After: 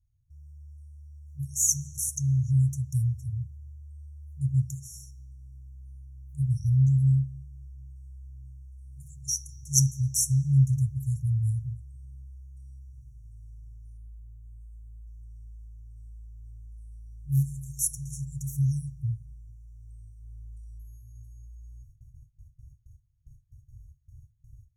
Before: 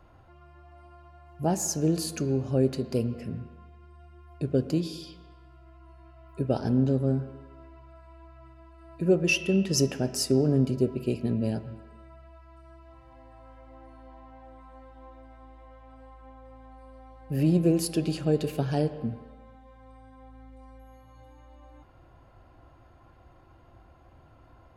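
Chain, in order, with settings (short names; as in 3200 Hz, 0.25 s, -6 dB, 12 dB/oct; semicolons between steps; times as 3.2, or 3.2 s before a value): gate with hold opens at -45 dBFS; 13.97–15.07 fixed phaser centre 1800 Hz, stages 4; FFT band-reject 140–5500 Hz; gain +7.5 dB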